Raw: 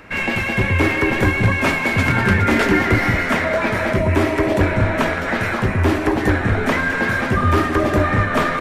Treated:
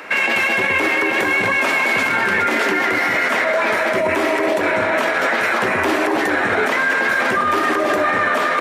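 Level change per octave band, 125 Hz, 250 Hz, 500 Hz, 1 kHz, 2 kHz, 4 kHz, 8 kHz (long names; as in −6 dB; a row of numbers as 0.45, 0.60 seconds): −18.5, −5.0, +1.0, +3.0, +3.5, +3.0, +3.0 decibels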